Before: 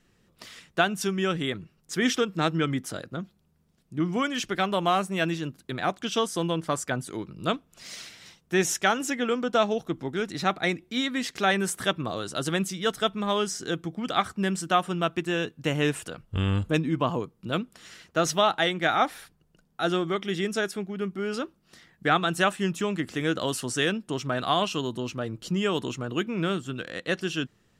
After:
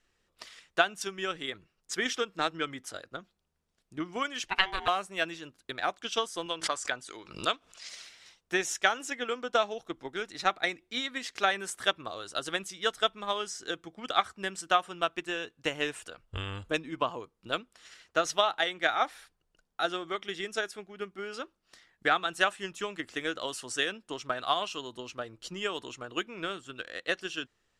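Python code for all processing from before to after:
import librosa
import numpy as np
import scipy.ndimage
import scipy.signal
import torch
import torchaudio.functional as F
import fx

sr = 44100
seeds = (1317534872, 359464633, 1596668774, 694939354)

y = fx.chain(x, sr, fx.peak_eq(hz=2300.0, db=14.5, octaves=0.47),
    fx.ring_mod(carrier_hz=570.0), at=(4.48, 4.88))
y = fx.chain(y, sr, fx.lowpass(hz=7100.0, slope=12),
    fx.tilt_eq(slope=2.0),
    fx.pre_swell(db_per_s=75.0), at=(6.46, 7.89))
y = scipy.signal.sosfilt(scipy.signal.butter(2, 10000.0, 'lowpass', fs=sr, output='sos'), y)
y = fx.peak_eq(y, sr, hz=160.0, db=-15.0, octaves=2.0)
y = fx.transient(y, sr, attack_db=7, sustain_db=0)
y = y * 10.0 ** (-5.5 / 20.0)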